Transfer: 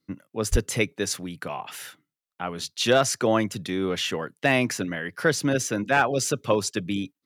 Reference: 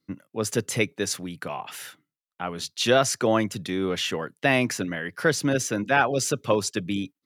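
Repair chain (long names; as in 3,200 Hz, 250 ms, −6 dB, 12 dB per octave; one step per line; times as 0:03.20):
clipped peaks rebuilt −9 dBFS
high-pass at the plosives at 0:00.51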